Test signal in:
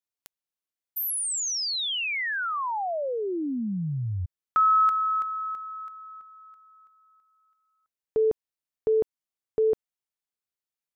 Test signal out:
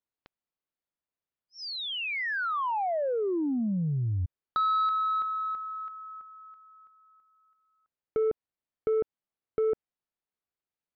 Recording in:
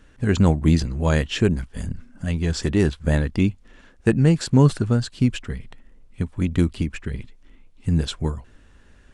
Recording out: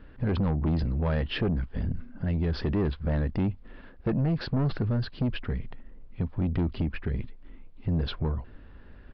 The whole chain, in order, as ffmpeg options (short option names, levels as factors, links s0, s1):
-af "lowpass=f=1300:p=1,acompressor=threshold=0.0282:ratio=2:attack=20:release=29:knee=6:detection=peak,aresample=11025,asoftclip=type=tanh:threshold=0.0562,aresample=44100,volume=1.5"